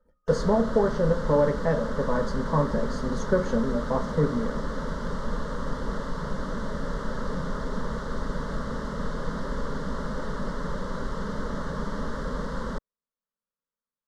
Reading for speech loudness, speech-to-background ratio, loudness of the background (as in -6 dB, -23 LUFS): -26.5 LUFS, 6.5 dB, -33.0 LUFS